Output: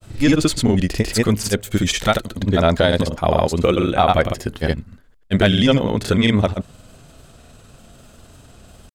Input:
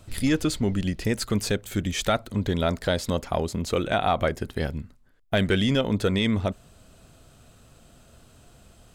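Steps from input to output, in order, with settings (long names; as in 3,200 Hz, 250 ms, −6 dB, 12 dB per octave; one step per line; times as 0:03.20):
granular cloud, pitch spread up and down by 0 semitones
level +9 dB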